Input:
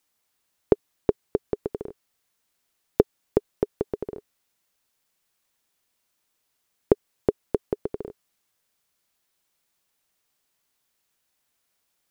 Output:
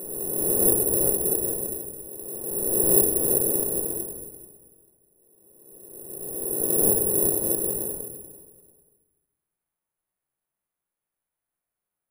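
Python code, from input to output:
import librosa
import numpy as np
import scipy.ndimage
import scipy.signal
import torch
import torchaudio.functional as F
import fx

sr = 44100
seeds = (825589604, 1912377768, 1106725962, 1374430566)

p1 = fx.spec_swells(x, sr, rise_s=2.22)
p2 = scipy.signal.sosfilt(scipy.signal.butter(2, 1700.0, 'lowpass', fs=sr, output='sos'), p1)
p3 = p2 + fx.echo_feedback(p2, sr, ms=439, feedback_pct=28, wet_db=-18.0, dry=0)
p4 = fx.room_shoebox(p3, sr, seeds[0], volume_m3=370.0, walls='mixed', distance_m=0.95)
p5 = (np.kron(scipy.signal.resample_poly(p4, 1, 4), np.eye(4)[0]) * 4)[:len(p4)]
y = p5 * librosa.db_to_amplitude(-14.0)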